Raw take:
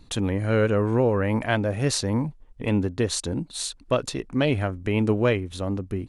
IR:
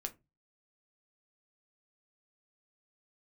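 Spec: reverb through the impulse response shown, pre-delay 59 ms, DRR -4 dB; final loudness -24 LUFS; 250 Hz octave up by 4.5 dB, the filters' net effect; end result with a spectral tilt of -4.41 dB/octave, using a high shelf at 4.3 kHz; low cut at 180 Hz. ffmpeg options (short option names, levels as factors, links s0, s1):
-filter_complex "[0:a]highpass=180,equalizer=f=250:t=o:g=7,highshelf=f=4300:g=8.5,asplit=2[s0][s1];[1:a]atrim=start_sample=2205,adelay=59[s2];[s1][s2]afir=irnorm=-1:irlink=0,volume=1.88[s3];[s0][s3]amix=inputs=2:normalize=0,volume=0.422"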